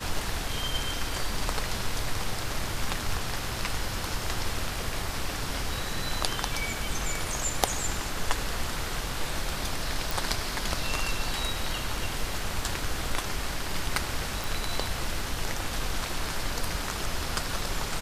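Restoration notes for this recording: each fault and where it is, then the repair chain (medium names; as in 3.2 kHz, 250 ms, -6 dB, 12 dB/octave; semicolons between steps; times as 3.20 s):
10.11 s: pop
14.44 s: pop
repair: de-click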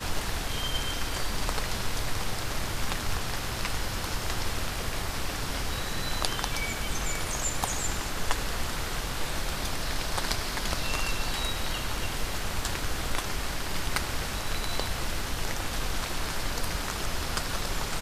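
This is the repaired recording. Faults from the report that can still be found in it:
nothing left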